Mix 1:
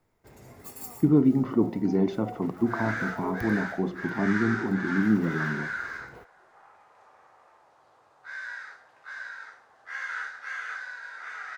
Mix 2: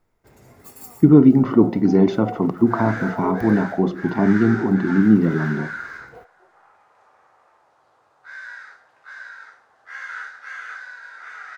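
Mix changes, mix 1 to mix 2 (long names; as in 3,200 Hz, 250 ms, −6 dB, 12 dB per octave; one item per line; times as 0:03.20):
speech +9.0 dB
master: add parametric band 1,400 Hz +2.5 dB 0.26 octaves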